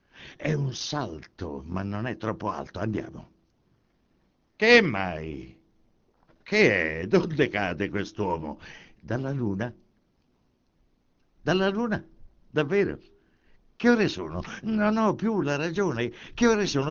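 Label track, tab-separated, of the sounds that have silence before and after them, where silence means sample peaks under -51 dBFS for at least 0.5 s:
4.600000	5.580000	sound
6.230000	9.800000	sound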